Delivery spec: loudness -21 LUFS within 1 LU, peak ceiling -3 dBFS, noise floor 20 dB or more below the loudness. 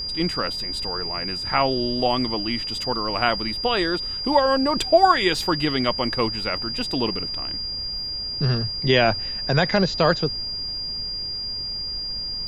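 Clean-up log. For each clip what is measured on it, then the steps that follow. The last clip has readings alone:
steady tone 4800 Hz; tone level -27 dBFS; noise floor -30 dBFS; noise floor target -43 dBFS; loudness -22.5 LUFS; peak -3.5 dBFS; loudness target -21.0 LUFS
-> notch 4800 Hz, Q 30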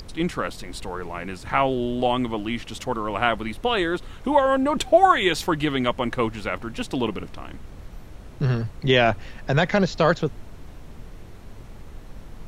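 steady tone none; noise floor -42 dBFS; noise floor target -43 dBFS
-> noise print and reduce 6 dB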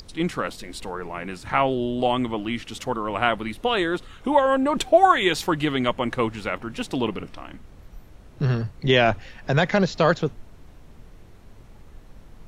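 noise floor -47 dBFS; loudness -23.0 LUFS; peak -4.0 dBFS; loudness target -21.0 LUFS
-> gain +2 dB; limiter -3 dBFS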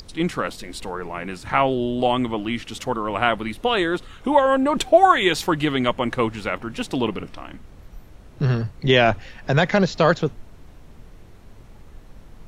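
loudness -21.5 LUFS; peak -3.0 dBFS; noise floor -45 dBFS

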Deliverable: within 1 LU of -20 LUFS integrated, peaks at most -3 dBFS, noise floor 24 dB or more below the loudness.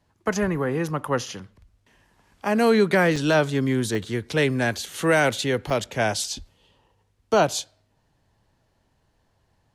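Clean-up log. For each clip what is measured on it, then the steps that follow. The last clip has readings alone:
dropouts 6; longest dropout 3.0 ms; loudness -23.0 LUFS; peak -9.0 dBFS; loudness target -20.0 LUFS
-> interpolate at 1.26/3.16/3.95/4.86/5.7/6.24, 3 ms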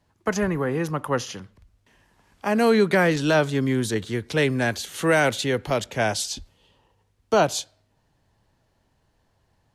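dropouts 0; loudness -23.0 LUFS; peak -9.0 dBFS; loudness target -20.0 LUFS
-> gain +3 dB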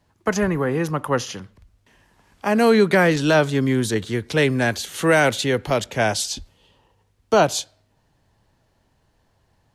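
loudness -20.0 LUFS; peak -6.0 dBFS; noise floor -65 dBFS

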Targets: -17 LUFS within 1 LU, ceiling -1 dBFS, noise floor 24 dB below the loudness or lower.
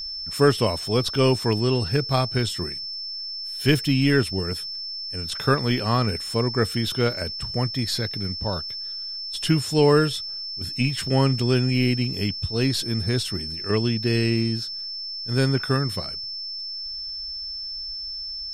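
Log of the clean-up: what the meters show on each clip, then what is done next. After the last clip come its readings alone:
steady tone 5300 Hz; tone level -30 dBFS; loudness -24.0 LUFS; peak -5.5 dBFS; loudness target -17.0 LUFS
-> notch 5300 Hz, Q 30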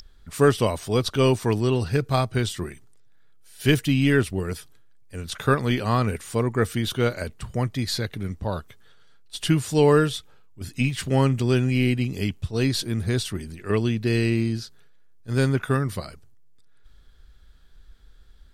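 steady tone none; loudness -24.0 LUFS; peak -6.0 dBFS; loudness target -17.0 LUFS
-> gain +7 dB; limiter -1 dBFS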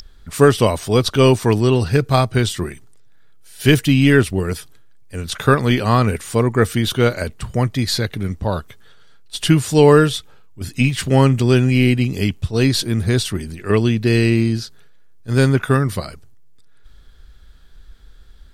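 loudness -17.0 LUFS; peak -1.0 dBFS; noise floor -43 dBFS

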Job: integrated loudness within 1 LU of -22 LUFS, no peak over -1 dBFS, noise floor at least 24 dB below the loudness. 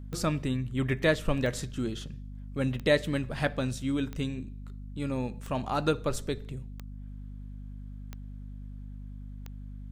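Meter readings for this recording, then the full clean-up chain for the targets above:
clicks 8; hum 50 Hz; harmonics up to 250 Hz; hum level -39 dBFS; loudness -31.0 LUFS; peak -10.5 dBFS; loudness target -22.0 LUFS
-> de-click; de-hum 50 Hz, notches 5; gain +9 dB

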